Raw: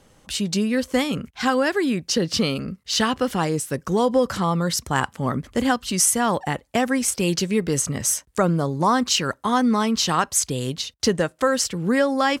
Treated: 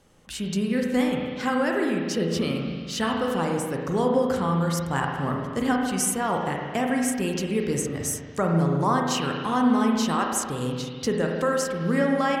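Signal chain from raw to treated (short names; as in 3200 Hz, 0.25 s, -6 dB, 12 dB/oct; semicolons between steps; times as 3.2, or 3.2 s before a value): spring tank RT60 1.7 s, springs 36/48 ms, chirp 75 ms, DRR 0.5 dB; dynamic EQ 4600 Hz, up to -6 dB, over -37 dBFS, Q 1.2; gain -5.5 dB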